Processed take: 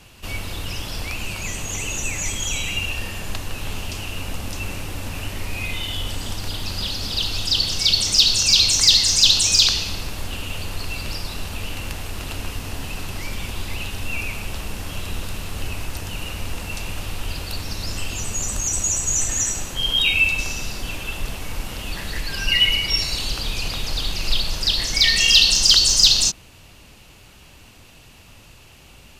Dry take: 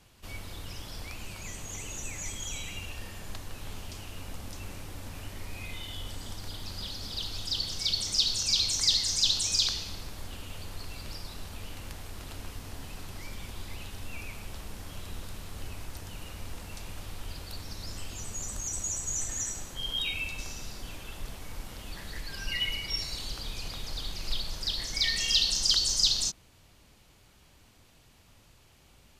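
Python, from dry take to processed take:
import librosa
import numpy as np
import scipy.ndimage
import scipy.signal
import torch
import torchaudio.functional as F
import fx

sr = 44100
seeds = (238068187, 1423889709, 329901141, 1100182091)

p1 = fx.peak_eq(x, sr, hz=2700.0, db=8.0, octaves=0.2)
p2 = 10.0 ** (-19.0 / 20.0) * np.tanh(p1 / 10.0 ** (-19.0 / 20.0))
p3 = p1 + (p2 * 10.0 ** (-3.0 / 20.0))
y = p3 * 10.0 ** (7.0 / 20.0)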